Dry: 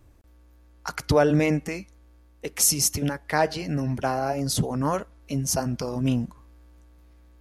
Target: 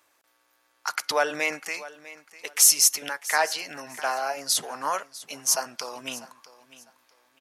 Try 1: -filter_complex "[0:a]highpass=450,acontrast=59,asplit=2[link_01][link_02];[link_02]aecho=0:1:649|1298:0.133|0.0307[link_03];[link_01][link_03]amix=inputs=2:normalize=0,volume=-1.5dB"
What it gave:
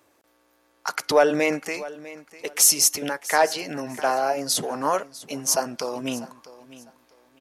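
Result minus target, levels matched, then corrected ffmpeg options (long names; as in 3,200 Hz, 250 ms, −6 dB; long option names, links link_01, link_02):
500 Hz band +7.0 dB
-filter_complex "[0:a]highpass=1000,acontrast=59,asplit=2[link_01][link_02];[link_02]aecho=0:1:649|1298:0.133|0.0307[link_03];[link_01][link_03]amix=inputs=2:normalize=0,volume=-1.5dB"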